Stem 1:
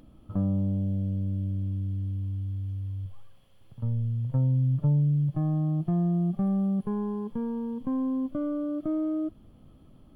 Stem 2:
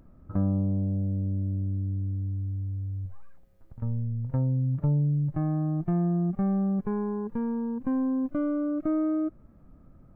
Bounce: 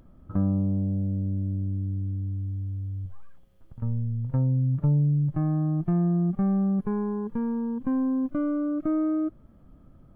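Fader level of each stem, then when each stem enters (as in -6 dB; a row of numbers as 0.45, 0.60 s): -12.5, +0.5 dB; 0.00, 0.00 s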